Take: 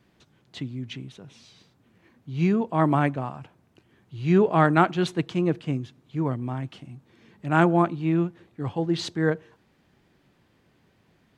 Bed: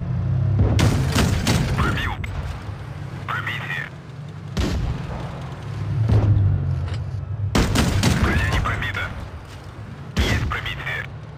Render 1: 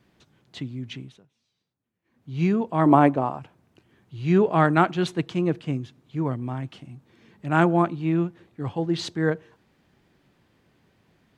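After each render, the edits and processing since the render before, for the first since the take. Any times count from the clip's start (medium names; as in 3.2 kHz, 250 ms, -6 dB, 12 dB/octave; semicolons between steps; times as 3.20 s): 0.99–2.33 s: dip -23 dB, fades 0.29 s; 2.86–3.39 s: high-order bell 540 Hz +8 dB 2.4 oct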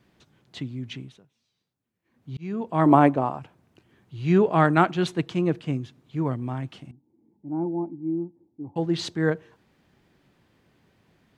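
2.37–2.77 s: fade in; 6.91–8.76 s: cascade formant filter u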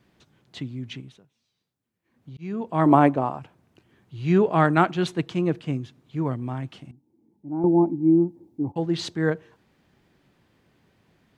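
1.00–2.39 s: compression, threshold -37 dBFS; 7.64–8.72 s: gain +10 dB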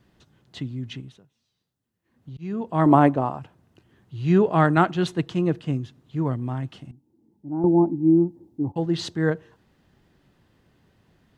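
bass shelf 85 Hz +9 dB; band-stop 2.3 kHz, Q 11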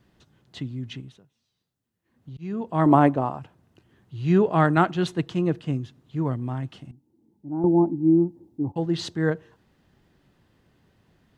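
trim -1 dB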